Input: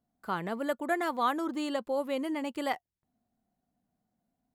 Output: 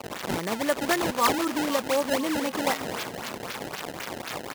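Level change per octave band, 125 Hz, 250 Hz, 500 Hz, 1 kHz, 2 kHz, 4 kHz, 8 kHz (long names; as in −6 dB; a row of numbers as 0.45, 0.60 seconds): can't be measured, +5.5 dB, +6.0 dB, +5.0 dB, +8.0 dB, +12.0 dB, +18.5 dB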